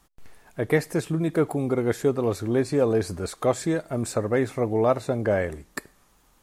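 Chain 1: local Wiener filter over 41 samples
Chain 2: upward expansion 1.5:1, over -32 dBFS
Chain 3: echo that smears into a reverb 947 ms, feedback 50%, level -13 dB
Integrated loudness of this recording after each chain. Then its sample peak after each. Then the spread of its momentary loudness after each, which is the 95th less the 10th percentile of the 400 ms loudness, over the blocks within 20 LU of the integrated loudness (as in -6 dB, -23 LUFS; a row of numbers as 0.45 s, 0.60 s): -26.0 LUFS, -27.5 LUFS, -25.0 LUFS; -8.0 dBFS, -7.5 dBFS, -7.5 dBFS; 10 LU, 10 LU, 11 LU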